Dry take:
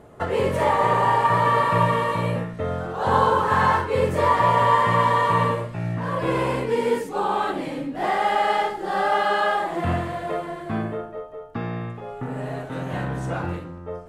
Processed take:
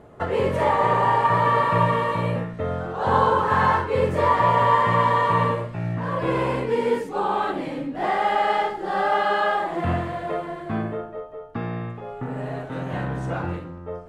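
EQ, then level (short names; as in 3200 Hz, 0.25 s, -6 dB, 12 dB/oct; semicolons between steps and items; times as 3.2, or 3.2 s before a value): high shelf 6400 Hz -10 dB; 0.0 dB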